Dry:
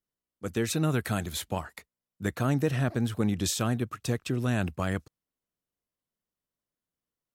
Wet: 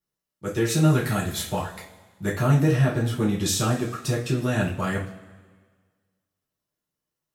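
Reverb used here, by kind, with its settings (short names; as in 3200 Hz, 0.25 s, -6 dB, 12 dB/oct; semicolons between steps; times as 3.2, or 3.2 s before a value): two-slope reverb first 0.33 s, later 1.6 s, from -18 dB, DRR -5.5 dB; gain -1.5 dB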